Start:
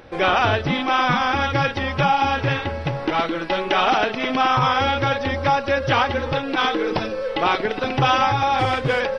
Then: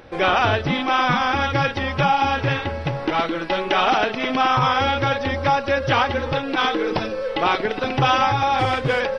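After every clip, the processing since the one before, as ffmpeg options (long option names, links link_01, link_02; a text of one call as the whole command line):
ffmpeg -i in.wav -af anull out.wav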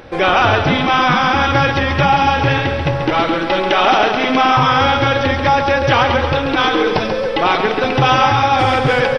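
ffmpeg -i in.wav -filter_complex "[0:a]asplit=2[link_01][link_02];[link_02]alimiter=limit=-15.5dB:level=0:latency=1,volume=-2.5dB[link_03];[link_01][link_03]amix=inputs=2:normalize=0,aecho=1:1:137|274|411|548|685|822:0.447|0.228|0.116|0.0593|0.0302|0.0154,volume=2dB" out.wav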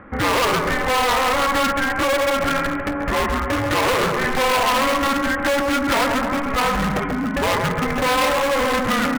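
ffmpeg -i in.wav -af "highpass=frequency=260:width_type=q:width=0.5412,highpass=frequency=260:width_type=q:width=1.307,lowpass=frequency=2100:width_type=q:width=0.5176,lowpass=frequency=2100:width_type=q:width=0.7071,lowpass=frequency=2100:width_type=q:width=1.932,afreqshift=-270,asoftclip=type=hard:threshold=-14.5dB,crystalizer=i=7:c=0,volume=-4dB" out.wav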